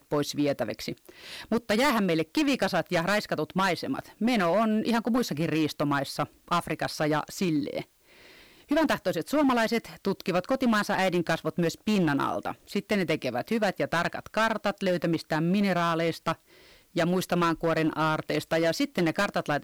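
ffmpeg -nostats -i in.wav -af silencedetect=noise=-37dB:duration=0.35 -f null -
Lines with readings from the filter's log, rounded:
silence_start: 7.82
silence_end: 8.71 | silence_duration: 0.89
silence_start: 16.34
silence_end: 16.96 | silence_duration: 0.62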